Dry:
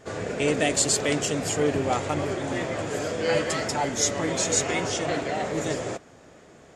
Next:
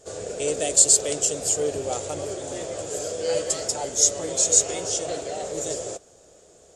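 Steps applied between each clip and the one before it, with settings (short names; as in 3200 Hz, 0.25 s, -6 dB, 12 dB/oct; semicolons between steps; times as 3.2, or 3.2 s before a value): graphic EQ 125/250/500/1000/2000/8000 Hz -8/-11/+5/-8/-12/+10 dB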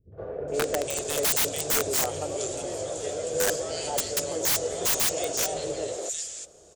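three bands offset in time lows, mids, highs 0.12/0.48 s, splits 220/1700 Hz; wrapped overs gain 18 dB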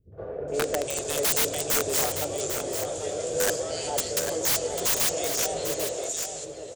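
echo 0.796 s -8 dB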